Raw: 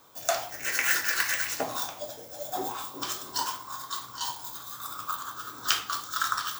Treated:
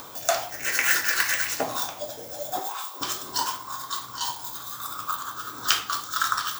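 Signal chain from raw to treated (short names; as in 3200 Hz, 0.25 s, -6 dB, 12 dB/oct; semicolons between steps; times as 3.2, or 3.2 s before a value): upward compressor, threshold -35 dBFS; 2.59–3.01 HPF 730 Hz 12 dB/oct; gain +3.5 dB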